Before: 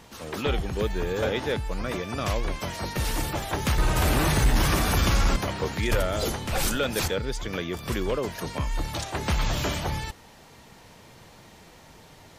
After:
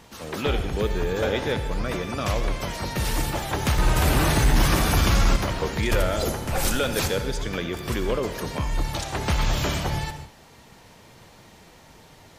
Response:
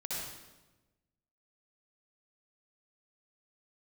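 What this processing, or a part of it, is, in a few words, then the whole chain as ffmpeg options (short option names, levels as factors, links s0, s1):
keyed gated reverb: -filter_complex "[0:a]asplit=3[s0][s1][s2];[1:a]atrim=start_sample=2205[s3];[s1][s3]afir=irnorm=-1:irlink=0[s4];[s2]apad=whole_len=546284[s5];[s4][s5]sidechaingate=range=0.0224:threshold=0.00447:ratio=16:detection=peak,volume=0.355[s6];[s0][s6]amix=inputs=2:normalize=0,asettb=1/sr,asplit=3[s7][s8][s9];[s7]atrim=end=6.224[s10];[s8]atrim=start=6.22:end=6.65,asetpts=PTS-STARTPTS,afade=t=in:d=0.004:c=qsin,afade=t=out:st=0.426:d=0.004:c=qsin,equalizer=f=3600:w=1:g=-5.5[s11];[s9]atrim=start=6.646[s12];[s10][s11]acrossfade=d=0.004:c1=hsin:c2=qsin[s13];[s13][s12]acrossfade=d=0.004:c1=qsin:c2=hsin"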